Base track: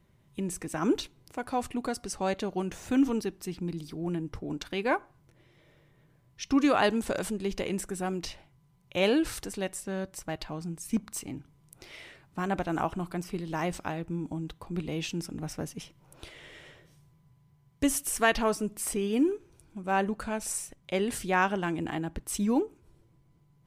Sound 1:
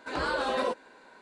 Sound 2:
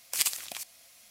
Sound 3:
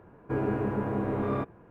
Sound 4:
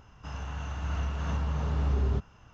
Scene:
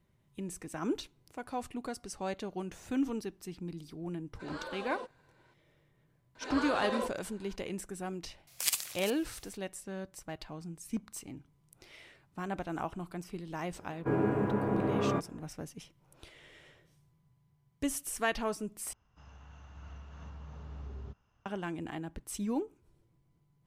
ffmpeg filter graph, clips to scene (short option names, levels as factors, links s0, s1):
-filter_complex "[1:a]asplit=2[s0][s1];[0:a]volume=0.447[s2];[3:a]highpass=100[s3];[s2]asplit=2[s4][s5];[s4]atrim=end=18.934[s6];[4:a]atrim=end=2.53,asetpts=PTS-STARTPTS,volume=0.141[s7];[s5]atrim=start=21.456[s8];[s0]atrim=end=1.21,asetpts=PTS-STARTPTS,volume=0.211,afade=t=in:d=0.004:c=hsin,afade=t=out:st=1.206:d=0.004:c=hsin,adelay=190953S[s9];[s1]atrim=end=1.21,asetpts=PTS-STARTPTS,volume=0.501,afade=t=in:d=0.004:c=hsin,afade=t=out:st=1.206:d=0.004:c=hsin,adelay=6350[s10];[2:a]atrim=end=1.1,asetpts=PTS-STARTPTS,volume=0.668,afade=t=in:d=0.004:c=hsin,afade=t=out:st=1.096:d=0.004:c=hsin,adelay=8470[s11];[s3]atrim=end=1.7,asetpts=PTS-STARTPTS,volume=0.944,afade=t=in:d=0.004:c=hsin,afade=t=out:st=1.696:d=0.004:c=hsin,adelay=13760[s12];[s6][s7]acrossfade=d=0.004:c1=hsin:c2=hsin[s13];[s13][s8]acrossfade=d=0.004:c1=hsin:c2=hsin[s14];[s14][s9][s10][s11][s12]amix=inputs=5:normalize=0"